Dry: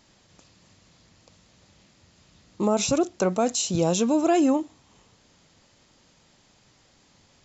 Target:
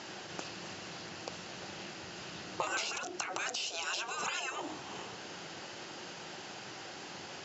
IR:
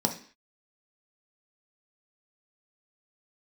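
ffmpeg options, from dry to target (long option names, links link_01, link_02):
-af "afftfilt=real='re*lt(hypot(re,im),0.0631)':imag='im*lt(hypot(re,im),0.0631)':win_size=1024:overlap=0.75,equalizer=frequency=2700:width=3.5:gain=8.5,acompressor=threshold=-46dB:ratio=10,highpass=180,equalizer=frequency=250:width_type=q:width=4:gain=-6,equalizer=frequency=360:width_type=q:width=4:gain=7,equalizer=frequency=770:width_type=q:width=4:gain=6,equalizer=frequency=1500:width_type=q:width=4:gain=7,equalizer=frequency=2500:width_type=q:width=4:gain=-4,equalizer=frequency=3600:width_type=q:width=4:gain=-3,lowpass=frequency=6600:width=0.5412,lowpass=frequency=6600:width=1.3066,volume=13.5dB"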